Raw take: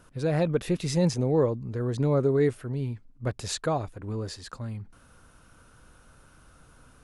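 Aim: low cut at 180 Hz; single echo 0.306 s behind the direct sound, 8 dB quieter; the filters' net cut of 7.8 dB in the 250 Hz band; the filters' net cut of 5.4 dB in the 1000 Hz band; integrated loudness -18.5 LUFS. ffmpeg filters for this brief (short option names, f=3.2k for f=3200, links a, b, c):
-af "highpass=180,equalizer=f=250:t=o:g=-9,equalizer=f=1k:t=o:g=-7,aecho=1:1:306:0.398,volume=13.5dB"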